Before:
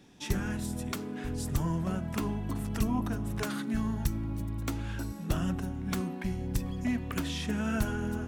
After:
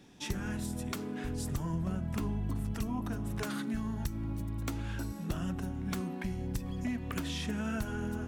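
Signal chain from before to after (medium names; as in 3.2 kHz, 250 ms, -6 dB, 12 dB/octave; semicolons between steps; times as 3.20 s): 1.73–2.74 s: bass shelf 160 Hz +9.5 dB; compression 3:1, threshold -32 dBFS, peak gain reduction 7.5 dB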